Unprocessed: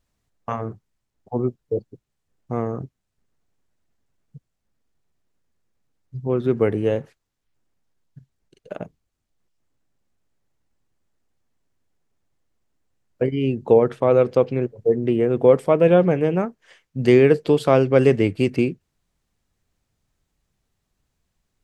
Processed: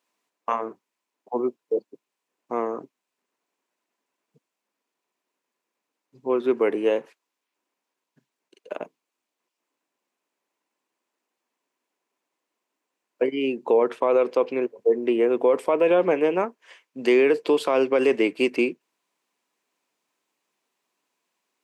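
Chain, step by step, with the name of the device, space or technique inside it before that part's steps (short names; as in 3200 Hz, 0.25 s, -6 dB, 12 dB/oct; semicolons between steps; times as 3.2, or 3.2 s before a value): laptop speaker (HPF 280 Hz 24 dB/oct; bell 1000 Hz +9 dB 0.24 oct; bell 2500 Hz +5.5 dB 0.47 oct; limiter -10.5 dBFS, peak gain reduction 8 dB)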